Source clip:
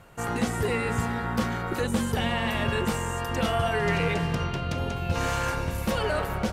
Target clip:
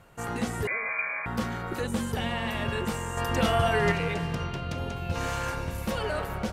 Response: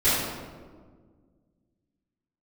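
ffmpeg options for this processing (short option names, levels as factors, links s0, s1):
-filter_complex "[0:a]asettb=1/sr,asplit=3[s0][s1][s2];[s0]atrim=end=0.674[s3];[s1]atrim=start=0.67:end=1.26,asetpts=PTS-STARTPTS,afade=t=in:d=0.004:c=qsin,afade=t=out:st=0.586:d=0.004:c=qsin,lowpass=f=2100:t=q:w=0.5098,lowpass=f=2100:t=q:w=0.6013,lowpass=f=2100:t=q:w=0.9,lowpass=f=2100:t=q:w=2.563,afreqshift=-2500[s4];[s2]atrim=start=1.256[s5];[s3][s4]acrossfade=d=0.004:c1=hsin:c2=qsin[s6];[s6][s5]acrossfade=d=0.004:c1=qsin:c2=hsin,asettb=1/sr,asplit=3[s7][s8][s9];[s7]atrim=end=3.174[s10];[s8]atrim=start=3.17:end=3.92,asetpts=PTS-STARTPTS,afade=t=in:d=0.004:c=qsin,afade=t=out:st=0.746:d=0.004:c=qsin,acontrast=29[s11];[s9]atrim=start=3.916[s12];[s10][s11]acrossfade=d=0.004:c1=hsin:c2=qsin[s13];[s13][s12]acrossfade=d=0.004:c1=qsin:c2=hsin,volume=0.668"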